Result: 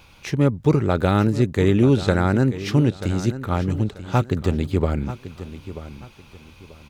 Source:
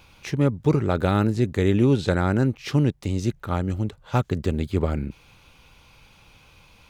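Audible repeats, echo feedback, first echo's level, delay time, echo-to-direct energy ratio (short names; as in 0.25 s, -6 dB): 2, 28%, -13.5 dB, 0.936 s, -13.0 dB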